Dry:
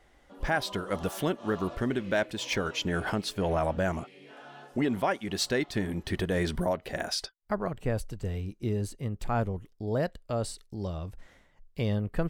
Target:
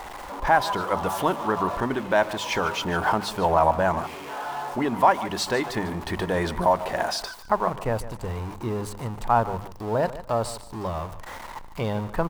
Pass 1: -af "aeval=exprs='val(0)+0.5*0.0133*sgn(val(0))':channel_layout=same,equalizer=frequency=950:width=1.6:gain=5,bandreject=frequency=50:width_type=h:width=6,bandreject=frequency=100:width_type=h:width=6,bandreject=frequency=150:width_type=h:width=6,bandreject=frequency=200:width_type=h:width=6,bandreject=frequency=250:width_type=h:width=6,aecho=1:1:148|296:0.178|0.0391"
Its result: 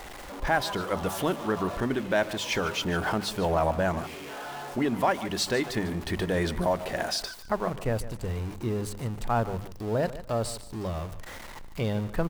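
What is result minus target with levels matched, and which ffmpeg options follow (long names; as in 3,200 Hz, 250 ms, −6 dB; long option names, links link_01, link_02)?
1,000 Hz band −4.5 dB
-af "aeval=exprs='val(0)+0.5*0.0133*sgn(val(0))':channel_layout=same,equalizer=frequency=950:width=1.6:gain=16,bandreject=frequency=50:width_type=h:width=6,bandreject=frequency=100:width_type=h:width=6,bandreject=frequency=150:width_type=h:width=6,bandreject=frequency=200:width_type=h:width=6,bandreject=frequency=250:width_type=h:width=6,aecho=1:1:148|296:0.178|0.0391"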